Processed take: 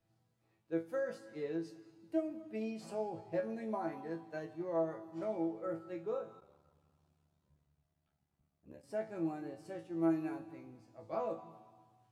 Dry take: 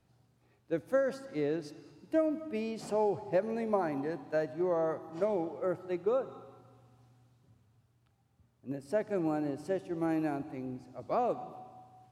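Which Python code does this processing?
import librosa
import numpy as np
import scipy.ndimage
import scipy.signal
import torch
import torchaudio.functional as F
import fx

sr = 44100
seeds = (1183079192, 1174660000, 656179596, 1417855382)

y = fx.resonator_bank(x, sr, root=45, chord='fifth', decay_s=0.25)
y = fx.ring_mod(y, sr, carrier_hz=36.0, at=(6.4, 8.82), fade=0.02)
y = y * 10.0 ** (4.0 / 20.0)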